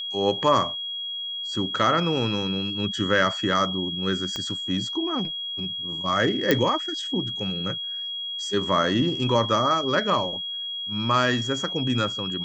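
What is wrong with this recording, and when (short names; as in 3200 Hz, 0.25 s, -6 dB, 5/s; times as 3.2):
tone 3300 Hz -29 dBFS
4.36 pop -16 dBFS
6.51 pop -5 dBFS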